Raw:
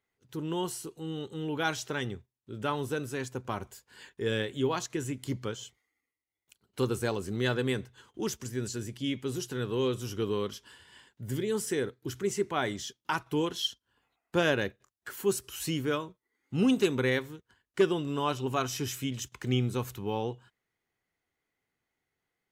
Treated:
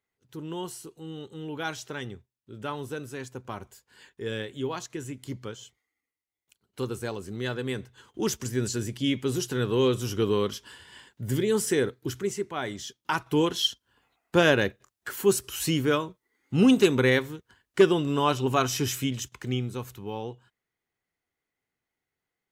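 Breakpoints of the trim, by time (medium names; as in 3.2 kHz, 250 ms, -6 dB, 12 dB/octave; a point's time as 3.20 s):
7.61 s -2.5 dB
8.32 s +6 dB
12.01 s +6 dB
12.49 s -3 dB
13.41 s +6 dB
18.99 s +6 dB
19.66 s -2.5 dB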